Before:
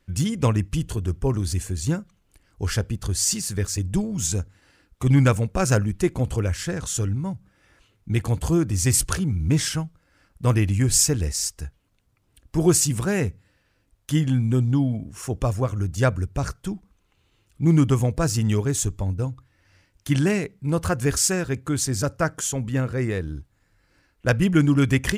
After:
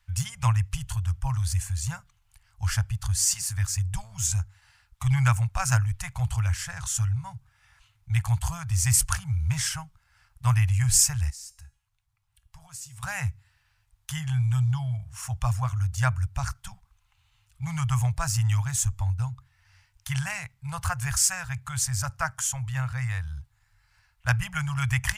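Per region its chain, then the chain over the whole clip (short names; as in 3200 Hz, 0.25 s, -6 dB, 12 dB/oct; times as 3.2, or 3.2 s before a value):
11.3–13.03 compressor 2:1, threshold -38 dBFS + resonator 280 Hz, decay 0.49 s
whole clip: Chebyshev band-stop 120–820 Hz, order 3; dynamic EQ 3800 Hz, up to -6 dB, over -46 dBFS, Q 1.9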